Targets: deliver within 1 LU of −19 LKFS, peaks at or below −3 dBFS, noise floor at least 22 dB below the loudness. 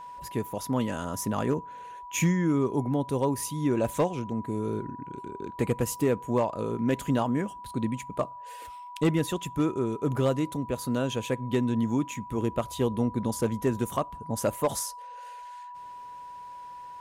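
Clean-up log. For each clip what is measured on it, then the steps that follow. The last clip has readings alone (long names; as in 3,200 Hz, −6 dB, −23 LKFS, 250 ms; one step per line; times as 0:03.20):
share of clipped samples 0.3%; peaks flattened at −17.0 dBFS; interfering tone 980 Hz; level of the tone −40 dBFS; integrated loudness −29.0 LKFS; sample peak −17.0 dBFS; target loudness −19.0 LKFS
→ clipped peaks rebuilt −17 dBFS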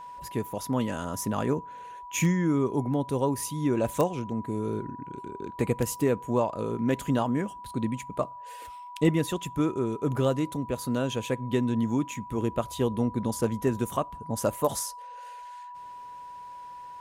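share of clipped samples 0.0%; interfering tone 980 Hz; level of the tone −40 dBFS
→ notch filter 980 Hz, Q 30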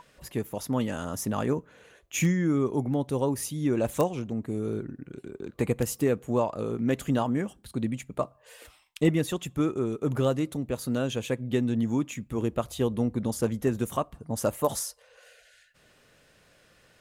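interfering tone none found; integrated loudness −29.0 LKFS; sample peak −9.0 dBFS; target loudness −19.0 LKFS
→ level +10 dB
brickwall limiter −3 dBFS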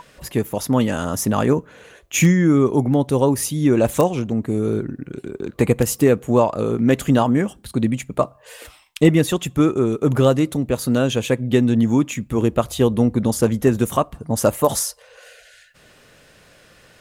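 integrated loudness −19.0 LKFS; sample peak −3.0 dBFS; background noise floor −52 dBFS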